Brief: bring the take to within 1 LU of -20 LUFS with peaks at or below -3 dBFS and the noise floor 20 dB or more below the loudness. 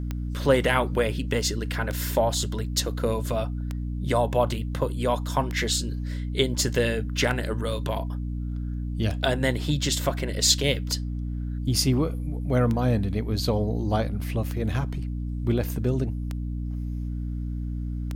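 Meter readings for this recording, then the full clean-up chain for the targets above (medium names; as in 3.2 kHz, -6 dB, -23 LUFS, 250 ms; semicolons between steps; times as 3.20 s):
clicks found 11; hum 60 Hz; highest harmonic 300 Hz; hum level -27 dBFS; loudness -26.5 LUFS; peak level -5.5 dBFS; loudness target -20.0 LUFS
-> de-click; de-hum 60 Hz, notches 5; trim +6.5 dB; peak limiter -3 dBFS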